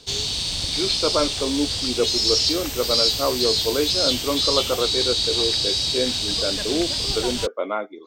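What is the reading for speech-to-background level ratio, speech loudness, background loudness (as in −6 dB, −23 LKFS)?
−5.0 dB, −26.0 LKFS, −21.0 LKFS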